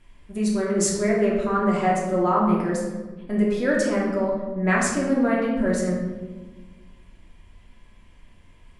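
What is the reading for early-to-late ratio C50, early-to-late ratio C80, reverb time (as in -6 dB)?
1.5 dB, 4.5 dB, 1.3 s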